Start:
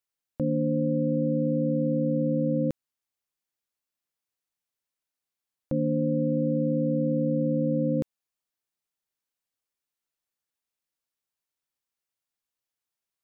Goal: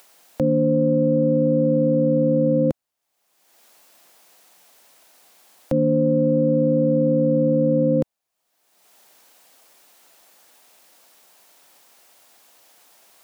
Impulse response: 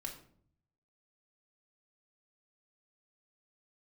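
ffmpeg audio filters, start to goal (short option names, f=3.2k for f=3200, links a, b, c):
-filter_complex "[0:a]acrossover=split=160[a][b];[b]acompressor=mode=upward:threshold=-37dB:ratio=2.5[c];[a][c]amix=inputs=2:normalize=0,equalizer=f=700:t=o:w=0.88:g=8,acontrast=36"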